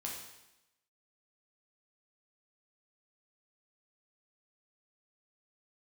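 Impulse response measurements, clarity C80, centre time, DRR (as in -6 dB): 5.5 dB, 50 ms, -2.5 dB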